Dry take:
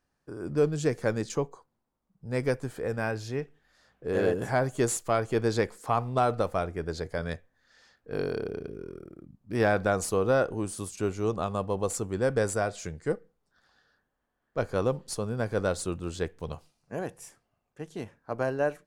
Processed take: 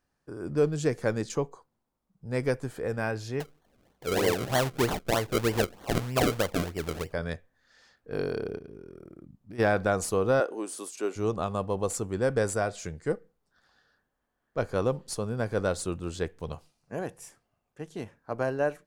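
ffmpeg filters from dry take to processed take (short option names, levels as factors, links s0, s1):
-filter_complex "[0:a]asettb=1/sr,asplit=3[s0][s1][s2];[s0]atrim=end=3.404[s3];[s1]atrim=start=3.4:end=7.13,asetpts=PTS-STARTPTS,afade=t=in:d=0.004:c=qsin,afade=t=out:st=3.726:d=0.004:c=qsin,acrusher=samples=34:mix=1:aa=0.000001:lfo=1:lforange=34:lforate=3.2[s4];[s2]atrim=start=7.126[s5];[s3][s4]acrossfade=d=0.004:c1=hsin:c2=qsin[s6];[s6][s5]acrossfade=d=0.004:c1=qsin:c2=hsin,asplit=3[s7][s8][s9];[s7]afade=t=out:st=8.57:d=0.02[s10];[s8]acompressor=threshold=0.01:ratio=6:attack=3.2:release=140:knee=1:detection=peak,afade=t=in:st=8.57:d=0.02,afade=t=out:st=9.58:d=0.02[s11];[s9]afade=t=in:st=9.58:d=0.02[s12];[s10][s11][s12]amix=inputs=3:normalize=0,asettb=1/sr,asplit=3[s13][s14][s15];[s13]atrim=end=10.404[s16];[s14]atrim=start=10.4:end=11.16,asetpts=PTS-STARTPTS,afade=t=in:d=0.004:c=qsin,afade=t=out:st=0.756:d=0.004:c=qsin,highpass=f=290:w=0.5412,highpass=f=290:w=1.3066[s17];[s15]atrim=start=11.156[s18];[s16][s17]acrossfade=d=0.004:c1=hsin:c2=qsin[s19];[s19][s18]acrossfade=d=0.004:c1=qsin:c2=hsin"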